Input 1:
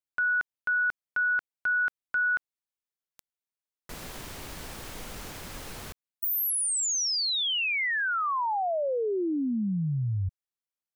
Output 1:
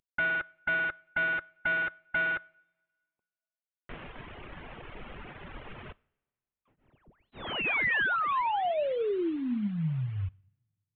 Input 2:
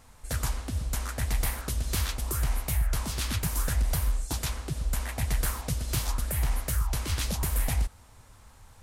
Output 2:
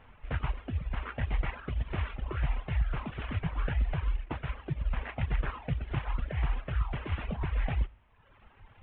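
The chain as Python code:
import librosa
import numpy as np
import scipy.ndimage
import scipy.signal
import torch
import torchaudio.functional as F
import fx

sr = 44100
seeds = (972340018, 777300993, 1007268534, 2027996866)

y = fx.cvsd(x, sr, bps=16000)
y = fx.rev_double_slope(y, sr, seeds[0], early_s=0.56, late_s=1.8, knee_db=-18, drr_db=12.0)
y = fx.dereverb_blind(y, sr, rt60_s=1.1)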